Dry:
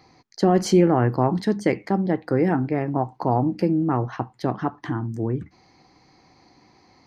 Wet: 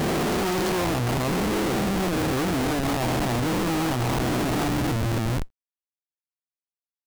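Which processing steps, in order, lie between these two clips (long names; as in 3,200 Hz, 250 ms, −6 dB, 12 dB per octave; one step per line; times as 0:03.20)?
peak hold with a rise ahead of every peak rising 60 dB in 2.97 s
comparator with hysteresis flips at −24.5 dBFS
bit-depth reduction 10 bits, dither none
level −5 dB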